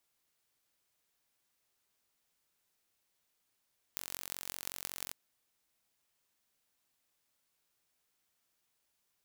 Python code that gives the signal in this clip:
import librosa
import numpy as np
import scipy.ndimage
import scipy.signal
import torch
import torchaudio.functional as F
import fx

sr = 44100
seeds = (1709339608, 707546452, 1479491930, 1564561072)

y = fx.impulse_train(sr, length_s=1.16, per_s=45.4, accent_every=8, level_db=-9.0)